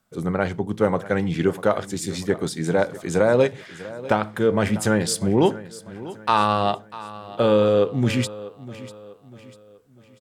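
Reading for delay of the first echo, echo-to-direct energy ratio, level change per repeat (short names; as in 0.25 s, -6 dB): 0.645 s, -16.0 dB, -7.5 dB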